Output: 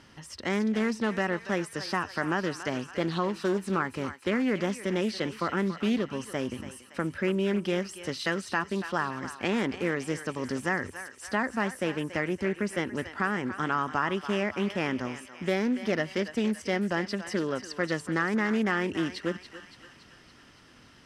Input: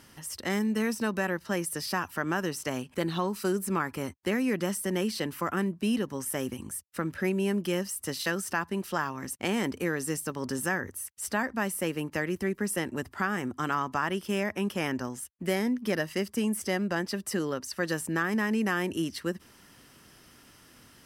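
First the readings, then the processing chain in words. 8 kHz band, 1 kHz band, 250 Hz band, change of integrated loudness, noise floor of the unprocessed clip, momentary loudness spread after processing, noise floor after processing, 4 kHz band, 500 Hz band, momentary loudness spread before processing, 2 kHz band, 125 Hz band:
−8.5 dB, +1.5 dB, +0.5 dB, +1.0 dB, −57 dBFS, 6 LU, −55 dBFS, 0.0 dB, +1.5 dB, 6 LU, +1.0 dB, +0.5 dB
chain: low-pass filter 5,200 Hz 12 dB per octave
on a send: feedback echo with a high-pass in the loop 283 ms, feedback 61%, high-pass 800 Hz, level −10 dB
on the sum: highs frequency-modulated by the lows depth 0.19 ms
level +1 dB

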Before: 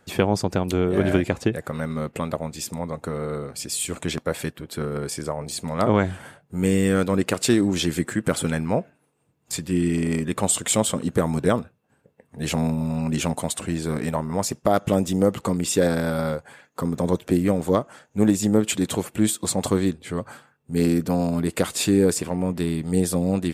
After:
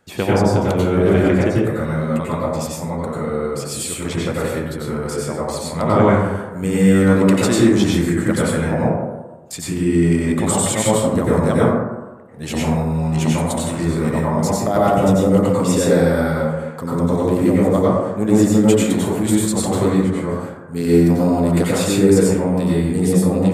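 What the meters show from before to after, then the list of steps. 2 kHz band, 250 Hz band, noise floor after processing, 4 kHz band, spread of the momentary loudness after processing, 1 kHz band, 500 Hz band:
+5.0 dB, +6.5 dB, −32 dBFS, +2.0 dB, 10 LU, +7.0 dB, +7.0 dB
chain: dense smooth reverb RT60 1.2 s, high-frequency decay 0.3×, pre-delay 80 ms, DRR −7 dB
level −2 dB

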